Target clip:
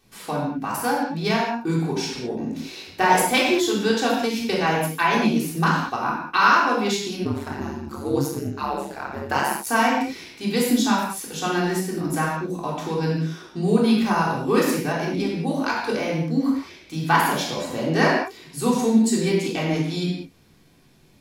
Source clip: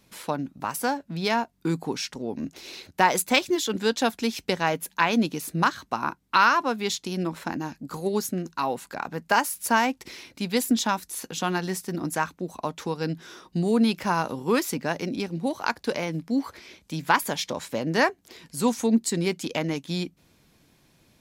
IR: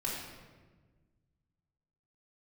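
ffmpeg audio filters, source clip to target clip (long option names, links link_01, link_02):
-filter_complex "[1:a]atrim=start_sample=2205,afade=type=out:start_time=0.27:duration=0.01,atrim=end_sample=12348[link_01];[0:a][link_01]afir=irnorm=-1:irlink=0,asplit=3[link_02][link_03][link_04];[link_02]afade=type=out:start_time=7.24:duration=0.02[link_05];[link_03]aeval=exprs='val(0)*sin(2*PI*69*n/s)':channel_layout=same,afade=type=in:start_time=7.24:duration=0.02,afade=type=out:start_time=9.65:duration=0.02[link_06];[link_04]afade=type=in:start_time=9.65:duration=0.02[link_07];[link_05][link_06][link_07]amix=inputs=3:normalize=0"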